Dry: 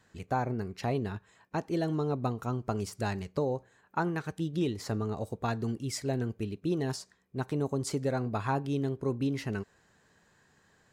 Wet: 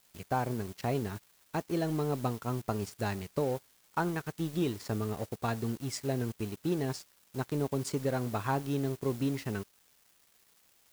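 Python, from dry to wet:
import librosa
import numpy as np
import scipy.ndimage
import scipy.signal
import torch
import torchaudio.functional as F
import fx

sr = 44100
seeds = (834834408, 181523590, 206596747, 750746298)

y = fx.dmg_noise_colour(x, sr, seeds[0], colour='white', level_db=-51.0)
y = np.sign(y) * np.maximum(np.abs(y) - 10.0 ** (-46.5 / 20.0), 0.0)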